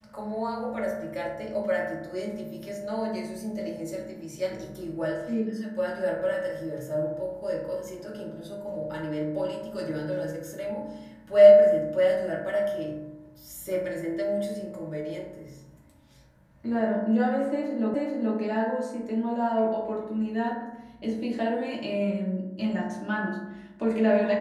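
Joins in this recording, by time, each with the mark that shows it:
17.94 repeat of the last 0.43 s

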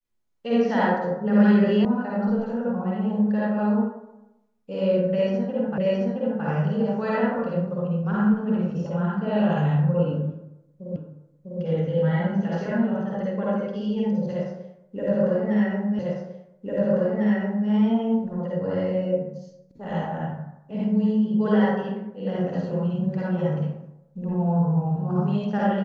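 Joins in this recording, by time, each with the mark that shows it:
1.85 sound cut off
5.78 repeat of the last 0.67 s
10.96 repeat of the last 0.65 s
15.99 repeat of the last 1.7 s

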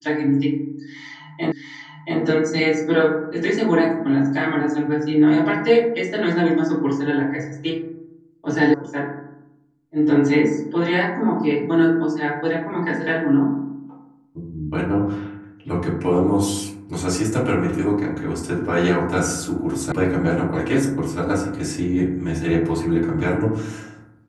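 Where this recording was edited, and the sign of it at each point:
1.52 repeat of the last 0.68 s
8.74 sound cut off
19.92 sound cut off

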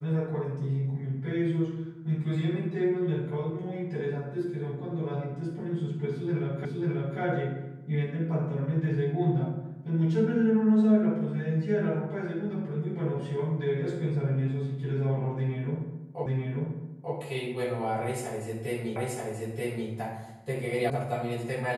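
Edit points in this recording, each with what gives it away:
6.65 repeat of the last 0.54 s
16.26 repeat of the last 0.89 s
18.96 repeat of the last 0.93 s
20.9 sound cut off

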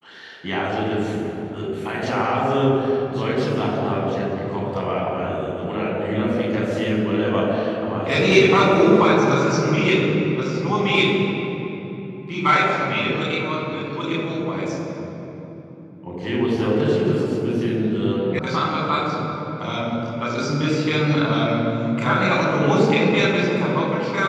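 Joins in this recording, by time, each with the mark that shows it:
18.39 sound cut off

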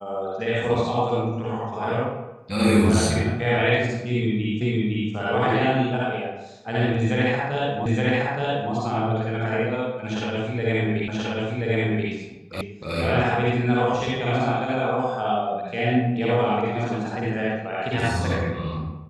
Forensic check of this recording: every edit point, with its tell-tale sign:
4.61 repeat of the last 0.51 s
7.86 repeat of the last 0.87 s
11.08 repeat of the last 1.03 s
12.61 sound cut off

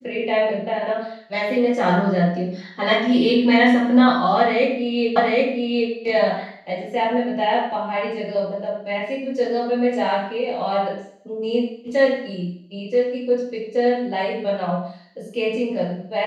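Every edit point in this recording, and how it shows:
5.16 repeat of the last 0.77 s

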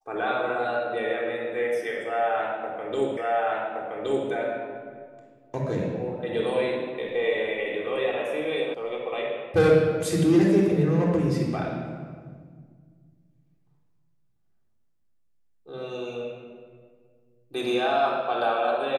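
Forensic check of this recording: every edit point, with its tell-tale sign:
3.17 repeat of the last 1.12 s
8.74 sound cut off

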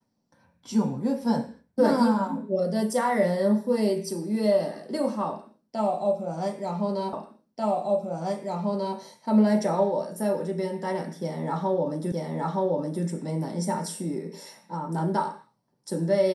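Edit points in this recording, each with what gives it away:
7.13 repeat of the last 1.84 s
12.12 repeat of the last 0.92 s

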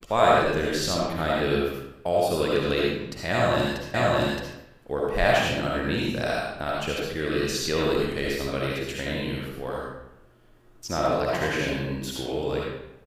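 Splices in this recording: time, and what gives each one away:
3.94 repeat of the last 0.62 s

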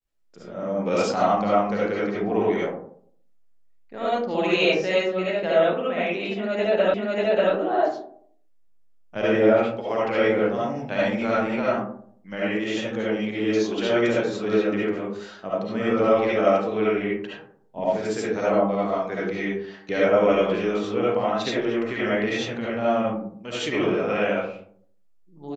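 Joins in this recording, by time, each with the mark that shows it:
6.94 repeat of the last 0.59 s

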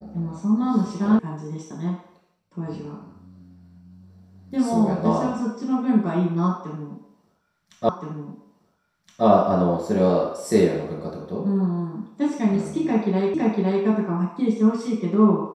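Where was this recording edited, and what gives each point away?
1.19 sound cut off
7.89 repeat of the last 1.37 s
13.34 repeat of the last 0.51 s

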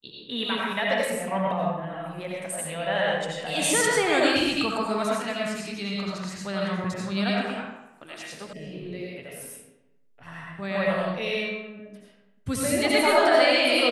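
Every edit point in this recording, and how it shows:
8.53 sound cut off

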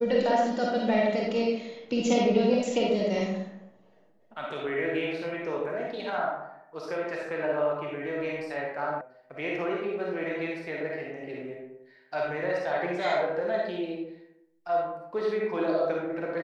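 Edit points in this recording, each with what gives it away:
9.01 sound cut off

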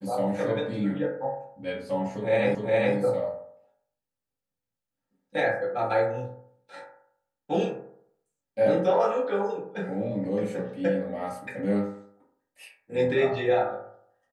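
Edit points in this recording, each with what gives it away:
2.55 repeat of the last 0.41 s

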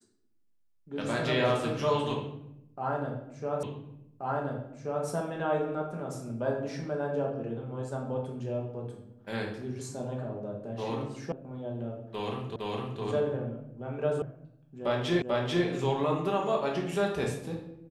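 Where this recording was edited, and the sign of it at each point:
3.63 repeat of the last 1.43 s
11.32 sound cut off
12.56 repeat of the last 0.46 s
14.22 sound cut off
15.22 repeat of the last 0.44 s

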